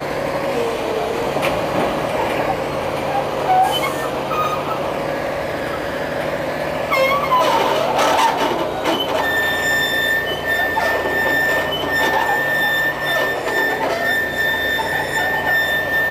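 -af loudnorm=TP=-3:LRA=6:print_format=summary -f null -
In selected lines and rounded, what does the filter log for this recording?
Input Integrated:    -17.9 LUFS
Input True Peak:      -6.2 dBTP
Input LRA:             3.1 LU
Input Threshold:     -27.9 LUFS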